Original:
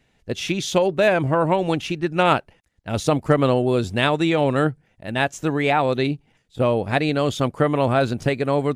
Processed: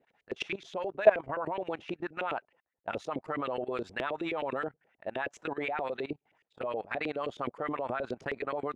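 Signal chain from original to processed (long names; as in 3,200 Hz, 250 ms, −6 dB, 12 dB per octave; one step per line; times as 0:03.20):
auto-filter band-pass saw up 9.5 Hz 380–2,500 Hz
output level in coarse steps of 19 dB
level +5 dB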